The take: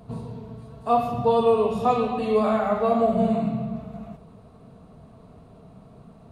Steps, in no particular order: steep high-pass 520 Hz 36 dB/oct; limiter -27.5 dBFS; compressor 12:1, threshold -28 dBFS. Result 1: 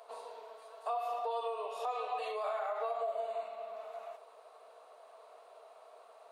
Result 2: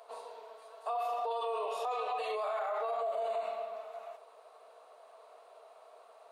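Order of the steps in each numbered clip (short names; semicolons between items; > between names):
compressor > steep high-pass > limiter; steep high-pass > limiter > compressor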